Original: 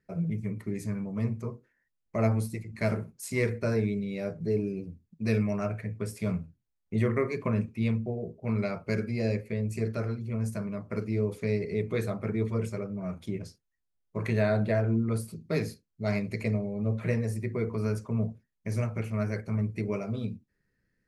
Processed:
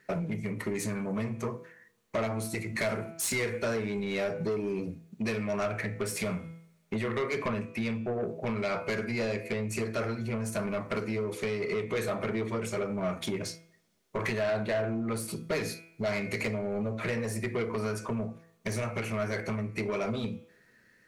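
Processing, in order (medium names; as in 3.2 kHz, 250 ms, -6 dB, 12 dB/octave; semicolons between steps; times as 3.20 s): band-stop 5 kHz, Q 15; de-hum 165.5 Hz, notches 21; compression 10:1, threshold -36 dBFS, peak gain reduction 15.5 dB; overdrive pedal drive 25 dB, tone 7.9 kHz, clips at -20.5 dBFS; two-slope reverb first 0.29 s, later 2.3 s, from -28 dB, DRR 13 dB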